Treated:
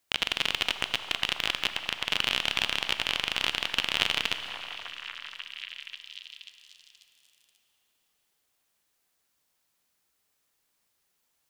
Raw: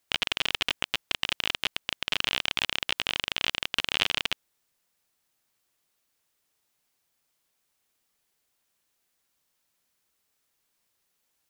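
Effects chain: repeats whose band climbs or falls 539 ms, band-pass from 880 Hz, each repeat 0.7 oct, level -6.5 dB; Schroeder reverb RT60 3.4 s, combs from 28 ms, DRR 10.5 dB

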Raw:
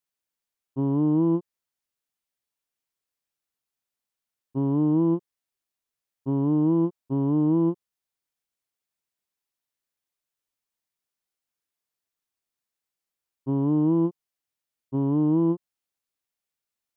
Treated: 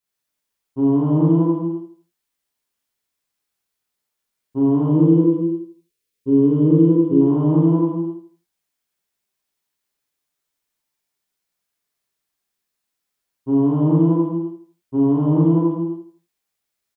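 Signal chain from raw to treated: 4.86–7.21 s: FFT filter 220 Hz 0 dB, 480 Hz +6 dB, 730 Hz -18 dB, 1 kHz -10 dB, 2.5 kHz +1 dB; feedback delay 81 ms, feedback 34%, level -12.5 dB; gated-style reverb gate 490 ms falling, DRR -7 dB

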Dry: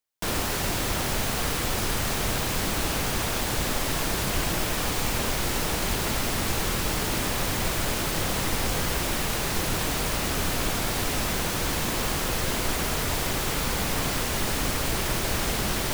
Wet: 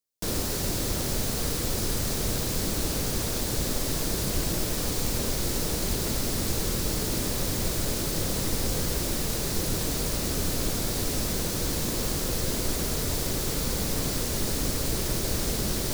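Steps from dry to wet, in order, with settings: high-order bell 1.5 kHz -8.5 dB 2.5 oct

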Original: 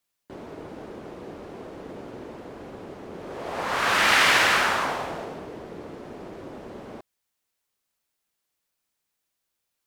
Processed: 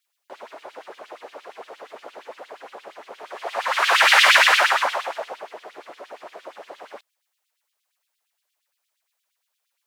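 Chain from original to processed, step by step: LFO high-pass sine 8.6 Hz 570–3500 Hz; trim +2 dB

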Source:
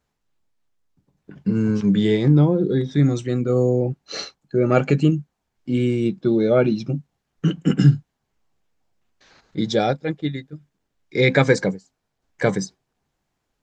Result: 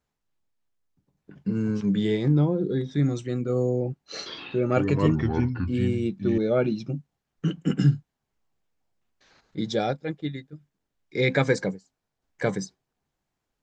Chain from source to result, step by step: 4.14–6.38 s: ever faster or slower copies 120 ms, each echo -4 st, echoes 2; trim -6 dB

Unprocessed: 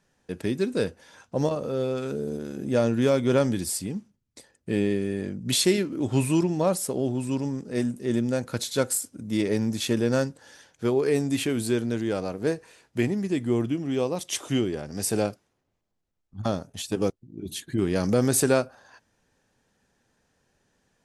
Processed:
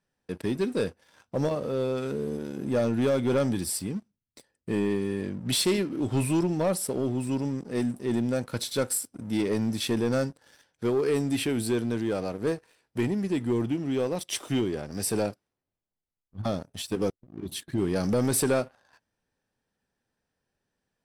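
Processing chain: band-stop 6.7 kHz, Q 5.3; waveshaping leveller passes 2; trim -8 dB

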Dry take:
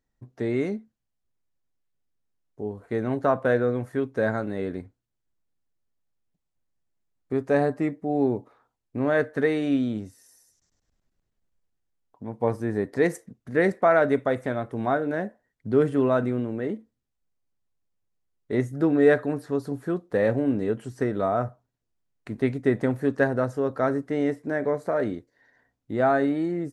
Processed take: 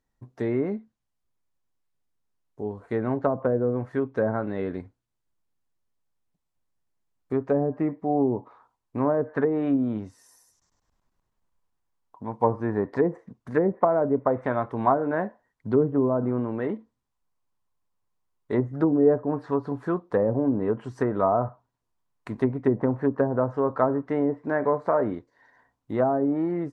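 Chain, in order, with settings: low-pass that closes with the level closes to 480 Hz, closed at -18 dBFS; peaking EQ 1 kHz +5.5 dB 0.67 oct, from 7.89 s +12.5 dB

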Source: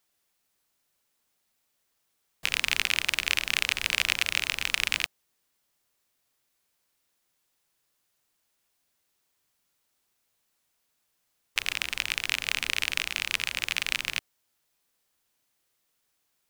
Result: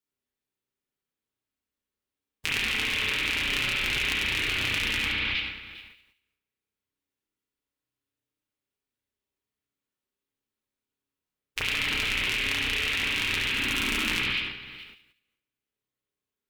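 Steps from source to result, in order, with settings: 13.50–14.08 s: graphic EQ 125/250/500/2000/4000 Hz -9/+11/-9/-6/-6 dB; spring tank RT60 1.6 s, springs 32/57 ms, chirp 35 ms, DRR -6.5 dB; gate -51 dBFS, range -19 dB; level held to a coarse grid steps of 16 dB; resonant low shelf 500 Hz +6.5 dB, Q 1.5; band-stop 710 Hz, Q 23; comb of notches 170 Hz; on a send: feedback echo behind a high-pass 71 ms, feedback 33%, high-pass 2.7 kHz, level -6.5 dB; on the sum: transient shaper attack -1 dB, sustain +11 dB; trim +4.5 dB

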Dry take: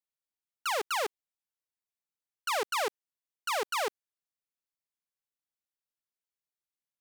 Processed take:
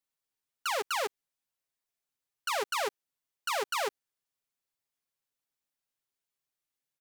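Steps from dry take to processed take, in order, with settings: comb 7.4 ms, depth 56%; peak limiter -27 dBFS, peak gain reduction 6 dB; trim +3 dB

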